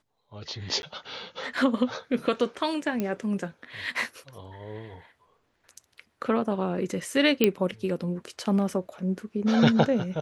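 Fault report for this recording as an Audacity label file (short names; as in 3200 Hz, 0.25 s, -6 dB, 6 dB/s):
0.820000	0.830000	gap
3.000000	3.000000	pop -16 dBFS
7.440000	7.440000	pop -6 dBFS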